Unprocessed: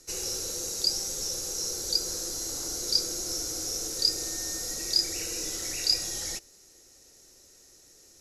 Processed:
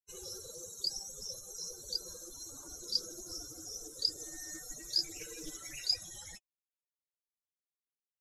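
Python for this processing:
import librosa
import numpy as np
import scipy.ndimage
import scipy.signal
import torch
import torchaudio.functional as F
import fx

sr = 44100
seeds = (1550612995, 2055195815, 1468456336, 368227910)

y = fx.bin_expand(x, sr, power=3.0)
y = fx.comb(y, sr, ms=6.7, depth=0.69, at=(4.19, 5.79))
y = fx.doppler_dist(y, sr, depth_ms=0.12)
y = y * librosa.db_to_amplitude(-2.5)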